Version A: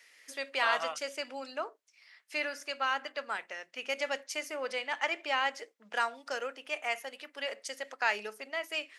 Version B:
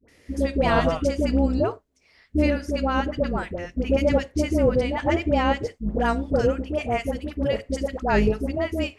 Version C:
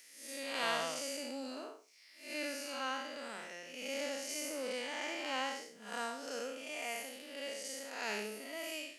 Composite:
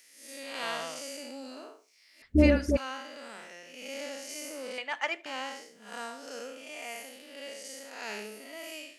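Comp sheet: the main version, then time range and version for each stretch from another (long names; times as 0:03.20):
C
0:02.22–0:02.77: punch in from B
0:04.78–0:05.26: punch in from A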